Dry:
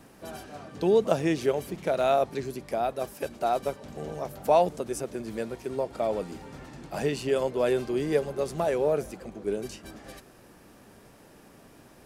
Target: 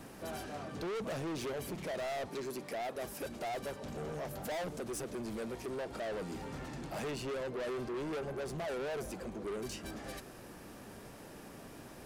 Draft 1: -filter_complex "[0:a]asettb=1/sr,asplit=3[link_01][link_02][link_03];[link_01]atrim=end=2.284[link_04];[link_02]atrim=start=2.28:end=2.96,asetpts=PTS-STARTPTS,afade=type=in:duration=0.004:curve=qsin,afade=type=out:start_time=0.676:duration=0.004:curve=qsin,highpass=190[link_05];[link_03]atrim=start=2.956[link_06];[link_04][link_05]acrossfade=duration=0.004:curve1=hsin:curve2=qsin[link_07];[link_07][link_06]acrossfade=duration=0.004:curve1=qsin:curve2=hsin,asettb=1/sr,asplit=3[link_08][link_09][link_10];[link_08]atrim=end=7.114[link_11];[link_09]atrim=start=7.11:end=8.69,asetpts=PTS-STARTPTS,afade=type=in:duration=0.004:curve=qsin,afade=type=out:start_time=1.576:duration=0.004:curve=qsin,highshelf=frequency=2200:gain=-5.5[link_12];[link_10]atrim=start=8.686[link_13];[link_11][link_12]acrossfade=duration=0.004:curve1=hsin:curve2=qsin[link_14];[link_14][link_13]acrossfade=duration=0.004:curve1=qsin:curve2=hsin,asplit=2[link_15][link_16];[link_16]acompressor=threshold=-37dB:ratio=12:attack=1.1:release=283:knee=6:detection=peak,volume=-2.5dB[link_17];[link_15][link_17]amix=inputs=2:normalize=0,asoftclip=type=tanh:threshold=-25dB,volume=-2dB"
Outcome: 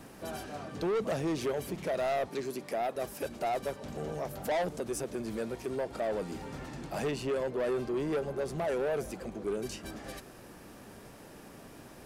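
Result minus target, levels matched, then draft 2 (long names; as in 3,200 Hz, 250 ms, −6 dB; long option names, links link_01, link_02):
soft clipping: distortion −5 dB
-filter_complex "[0:a]asettb=1/sr,asplit=3[link_01][link_02][link_03];[link_01]atrim=end=2.284[link_04];[link_02]atrim=start=2.28:end=2.96,asetpts=PTS-STARTPTS,afade=type=in:duration=0.004:curve=qsin,afade=type=out:start_time=0.676:duration=0.004:curve=qsin,highpass=190[link_05];[link_03]atrim=start=2.956[link_06];[link_04][link_05]acrossfade=duration=0.004:curve1=hsin:curve2=qsin[link_07];[link_07][link_06]acrossfade=duration=0.004:curve1=qsin:curve2=hsin,asettb=1/sr,asplit=3[link_08][link_09][link_10];[link_08]atrim=end=7.114[link_11];[link_09]atrim=start=7.11:end=8.69,asetpts=PTS-STARTPTS,afade=type=in:duration=0.004:curve=qsin,afade=type=out:start_time=1.576:duration=0.004:curve=qsin,highshelf=frequency=2200:gain=-5.5[link_12];[link_10]atrim=start=8.686[link_13];[link_11][link_12]acrossfade=duration=0.004:curve1=hsin:curve2=qsin[link_14];[link_14][link_13]acrossfade=duration=0.004:curve1=qsin:curve2=hsin,asplit=2[link_15][link_16];[link_16]acompressor=threshold=-37dB:ratio=12:attack=1.1:release=283:knee=6:detection=peak,volume=-2.5dB[link_17];[link_15][link_17]amix=inputs=2:normalize=0,asoftclip=type=tanh:threshold=-34dB,volume=-2dB"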